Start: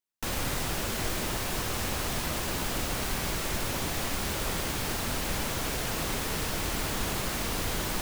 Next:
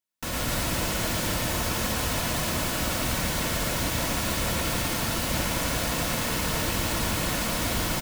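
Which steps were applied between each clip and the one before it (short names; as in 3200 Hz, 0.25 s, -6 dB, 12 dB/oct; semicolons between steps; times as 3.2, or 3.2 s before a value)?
notch comb 400 Hz; on a send: loudspeakers at several distances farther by 38 m -2 dB, 88 m -2 dB; on the sum: gain +2 dB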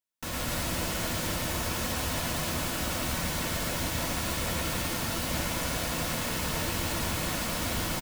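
doubler 12 ms -11 dB; gain -4 dB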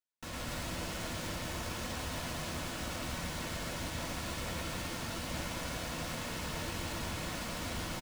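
median filter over 3 samples; gain -7 dB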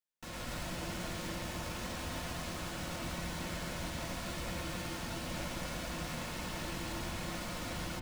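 reverb RT60 1.3 s, pre-delay 6 ms, DRR 5 dB; gain -2.5 dB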